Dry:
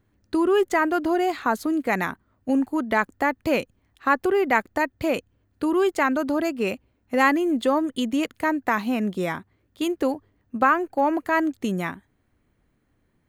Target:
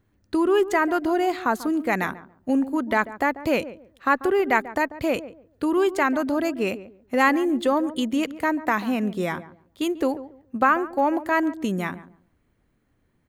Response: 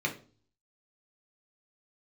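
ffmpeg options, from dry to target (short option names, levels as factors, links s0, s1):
-filter_complex "[0:a]asplit=2[s0][s1];[s1]adelay=141,lowpass=f=910:p=1,volume=0.211,asplit=2[s2][s3];[s3]adelay=141,lowpass=f=910:p=1,volume=0.24,asplit=2[s4][s5];[s5]adelay=141,lowpass=f=910:p=1,volume=0.24[s6];[s0][s2][s4][s6]amix=inputs=4:normalize=0"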